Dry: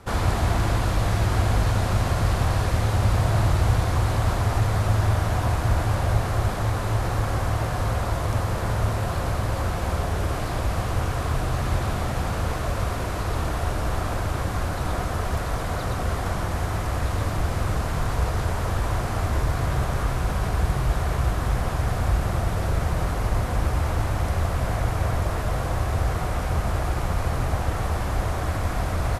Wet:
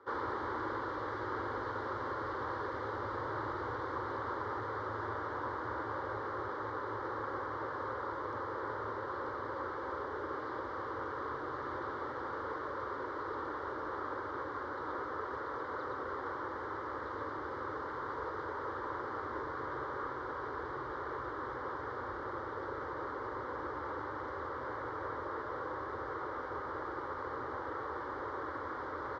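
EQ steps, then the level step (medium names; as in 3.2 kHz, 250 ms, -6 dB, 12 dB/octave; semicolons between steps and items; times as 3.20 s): band-pass 320–3500 Hz; distance through air 210 m; static phaser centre 690 Hz, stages 6; -4.0 dB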